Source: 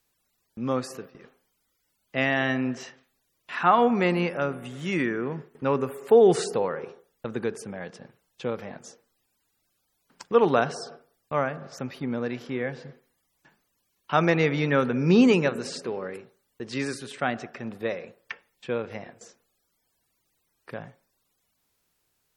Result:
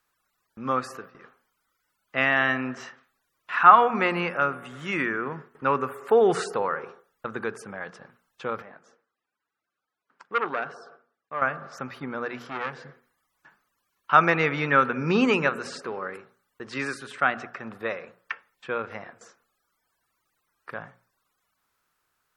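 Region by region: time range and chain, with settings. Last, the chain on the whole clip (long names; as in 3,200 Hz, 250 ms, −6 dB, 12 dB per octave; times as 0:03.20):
0:08.62–0:11.42: resonant band-pass 780 Hz, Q 0.64 + parametric band 880 Hz −8.5 dB 1.8 octaves + saturating transformer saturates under 1,400 Hz
0:12.39–0:12.85: high-shelf EQ 4,100 Hz +6 dB + saturating transformer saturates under 1,400 Hz
whole clip: parametric band 1,300 Hz +14 dB 1.2 octaves; mains-hum notches 60/120/180/240 Hz; dynamic equaliser 2,600 Hz, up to +4 dB, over −37 dBFS, Q 3.1; level −4.5 dB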